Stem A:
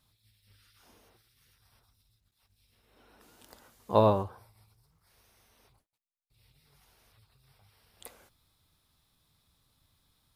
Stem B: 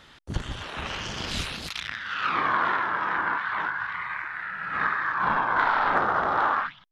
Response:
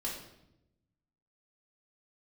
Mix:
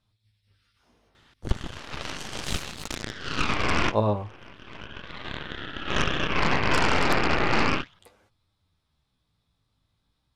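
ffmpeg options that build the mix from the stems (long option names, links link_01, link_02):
-filter_complex "[0:a]flanger=delay=9.5:depth=9.7:regen=35:speed=0.36:shape=sinusoidal,adynamicsmooth=sensitivity=7.5:basefreq=6700,volume=0.5dB,asplit=2[link_01][link_02];[1:a]aeval=exprs='0.398*(cos(1*acos(clip(val(0)/0.398,-1,1)))-cos(1*PI/2))+0.02*(cos(7*acos(clip(val(0)/0.398,-1,1)))-cos(7*PI/2))+0.126*(cos(8*acos(clip(val(0)/0.398,-1,1)))-cos(8*PI/2))':channel_layout=same,adelay=1150,volume=-4dB[link_03];[link_02]apad=whole_len=355801[link_04];[link_03][link_04]sidechaincompress=threshold=-53dB:ratio=6:attack=9.8:release=592[link_05];[link_01][link_05]amix=inputs=2:normalize=0,lowshelf=frequency=400:gain=3"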